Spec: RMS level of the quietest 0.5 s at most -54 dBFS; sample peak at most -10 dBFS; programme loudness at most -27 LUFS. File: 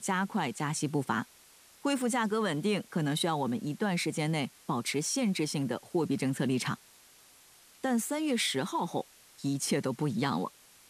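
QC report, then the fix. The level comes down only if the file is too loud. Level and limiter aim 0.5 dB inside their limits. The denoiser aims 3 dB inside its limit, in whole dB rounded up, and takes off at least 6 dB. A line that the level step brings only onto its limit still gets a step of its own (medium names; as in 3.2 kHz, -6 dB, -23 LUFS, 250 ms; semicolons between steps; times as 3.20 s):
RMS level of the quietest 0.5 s -59 dBFS: pass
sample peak -15.0 dBFS: pass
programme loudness -31.5 LUFS: pass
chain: none needed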